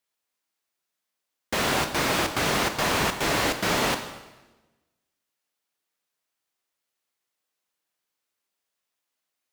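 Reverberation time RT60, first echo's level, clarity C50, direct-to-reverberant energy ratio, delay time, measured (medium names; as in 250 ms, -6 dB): 1.1 s, no echo, 9.0 dB, 7.0 dB, no echo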